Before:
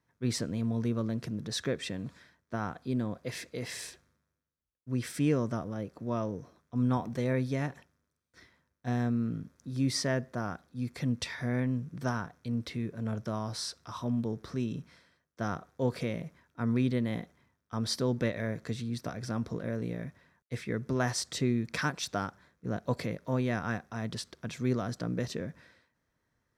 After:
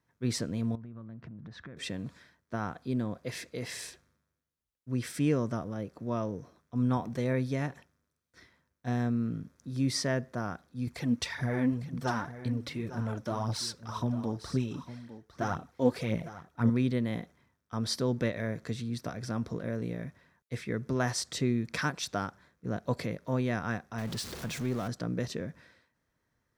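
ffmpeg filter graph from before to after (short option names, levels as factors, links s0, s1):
-filter_complex "[0:a]asettb=1/sr,asplit=3[s0][s1][s2];[s0]atrim=end=0.754[s3];[s1]atrim=start=0.75:end=1.77,asetpts=PTS-STARTPTS,afade=t=in:d=0.004:c=qsin,afade=t=out:st=1.016:d=0.004:c=qsin,lowpass=1500,equalizer=f=450:w=1.3:g=-10.5,acompressor=threshold=0.00891:ratio=10:attack=3.2:release=140:knee=1:detection=peak[s4];[s2]atrim=start=1.766[s5];[s3][s4]acrossfade=d=0.004:c1=hsin:c2=qsin[s6];[s6][s5]acrossfade=d=0.004:c1=qsin:c2=hsin,asettb=1/sr,asplit=3[s7][s8][s9];[s7]atrim=end=10.874[s10];[s8]atrim=start=10.87:end=16.7,asetpts=PTS-STARTPTS,afade=t=in:d=0.004:c=qsin,afade=t=out:st=5.826:d=0.004:c=qsin,aphaser=in_gain=1:out_gain=1:delay=4.1:decay=0.56:speed=1.9:type=triangular,equalizer=f=850:t=o:w=0.24:g=5,aecho=1:1:854:0.211,atrim=end_sample=257103[s11];[s9]atrim=start=16.696[s12];[s10][s11]acrossfade=d=0.004:c1=hsin:c2=qsin[s13];[s13][s12]acrossfade=d=0.004:c1=qsin:c2=hsin,asettb=1/sr,asplit=3[s14][s15][s16];[s14]atrim=end=23.984[s17];[s15]atrim=start=23.98:end=24.88,asetpts=PTS-STARTPTS,afade=t=in:d=0.004:c=qsin,afade=t=out:st=0.896:d=0.004:c=qsin,aeval=exprs='val(0)+0.5*0.0141*sgn(val(0))':c=same,acompressor=threshold=0.0224:ratio=1.5:attack=3.2:release=140:knee=1:detection=peak[s18];[s16]atrim=start=24.876[s19];[s17][s18]acrossfade=d=0.004:c1=hsin:c2=qsin[s20];[s20][s19]acrossfade=d=0.004:c1=qsin:c2=hsin"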